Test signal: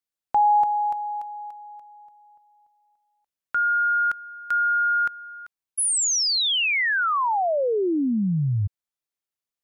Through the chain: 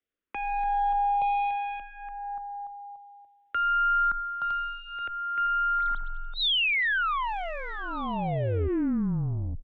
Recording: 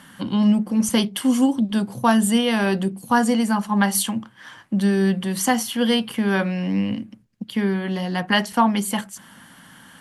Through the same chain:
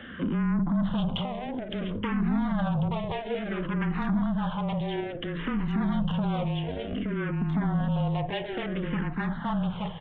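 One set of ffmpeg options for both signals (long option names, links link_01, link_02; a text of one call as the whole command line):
ffmpeg -i in.wav -filter_complex "[0:a]equalizer=frequency=2600:width=0.77:gain=-8,aeval=exprs='(tanh(22.4*val(0)+0.25)-tanh(0.25))/22.4':channel_layout=same,acontrast=38,asplit=2[link_01][link_02];[link_02]adelay=90,highpass=300,lowpass=3400,asoftclip=type=hard:threshold=-28dB,volume=-27dB[link_03];[link_01][link_03]amix=inputs=2:normalize=0,afreqshift=-22,asplit=2[link_04][link_05];[link_05]aecho=0:1:872:0.501[link_06];[link_04][link_06]amix=inputs=2:normalize=0,aresample=8000,aresample=44100,acompressor=threshold=-28dB:ratio=6:attack=1.3:release=65:knee=6:detection=rms,asplit=2[link_07][link_08];[link_08]afreqshift=-0.58[link_09];[link_07][link_09]amix=inputs=2:normalize=1,volume=6.5dB" out.wav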